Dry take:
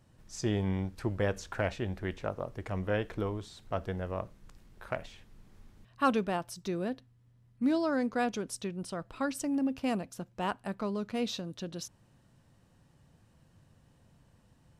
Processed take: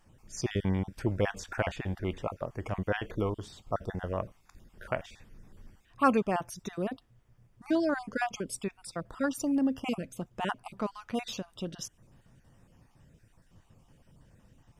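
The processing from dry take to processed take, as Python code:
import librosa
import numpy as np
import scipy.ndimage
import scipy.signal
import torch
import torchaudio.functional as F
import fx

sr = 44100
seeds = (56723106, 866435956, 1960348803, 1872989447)

y = fx.spec_dropout(x, sr, seeds[0], share_pct=31)
y = fx.dmg_noise_colour(y, sr, seeds[1], colour='brown', level_db=-68.0)
y = fx.notch(y, sr, hz=4100.0, q=6.3)
y = y * 10.0 ** (3.0 / 20.0)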